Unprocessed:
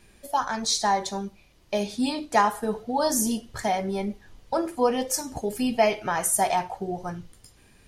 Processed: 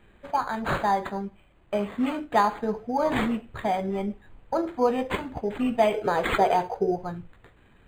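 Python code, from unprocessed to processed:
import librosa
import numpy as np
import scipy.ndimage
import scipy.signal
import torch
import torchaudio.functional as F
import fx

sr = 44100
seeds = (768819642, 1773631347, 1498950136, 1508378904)

y = fx.small_body(x, sr, hz=(450.0, 4000.0), ring_ms=45, db=18, at=(5.94, 6.96))
y = np.interp(np.arange(len(y)), np.arange(len(y))[::8], y[::8])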